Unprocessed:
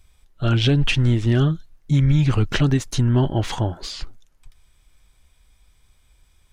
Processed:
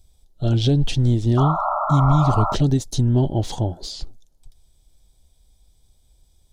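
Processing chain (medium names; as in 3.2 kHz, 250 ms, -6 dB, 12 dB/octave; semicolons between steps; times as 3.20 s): high-order bell 1.7 kHz -14.5 dB; painted sound noise, 1.37–2.55 s, 580–1400 Hz -23 dBFS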